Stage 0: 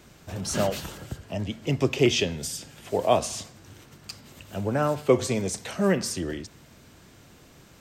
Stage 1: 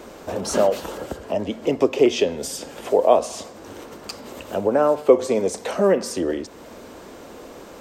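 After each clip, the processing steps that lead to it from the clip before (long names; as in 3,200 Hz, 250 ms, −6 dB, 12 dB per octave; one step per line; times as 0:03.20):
graphic EQ with 10 bands 125 Hz −12 dB, 250 Hz +6 dB, 500 Hz +12 dB, 1,000 Hz +7 dB
downward compressor 1.5 to 1, threshold −38 dBFS, peak gain reduction 13 dB
level +6.5 dB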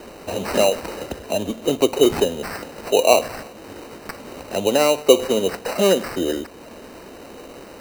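decimation without filtering 13×
level +1 dB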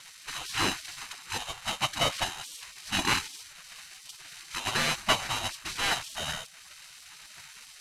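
variable-slope delta modulation 64 kbit/s
gate on every frequency bin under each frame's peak −20 dB weak
level +2.5 dB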